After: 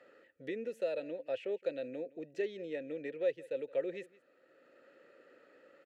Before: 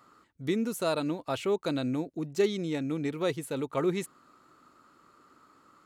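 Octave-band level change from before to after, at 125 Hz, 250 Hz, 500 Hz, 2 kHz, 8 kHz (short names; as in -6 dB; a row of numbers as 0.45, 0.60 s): -22.5 dB, -14.5 dB, -5.0 dB, -7.5 dB, under -20 dB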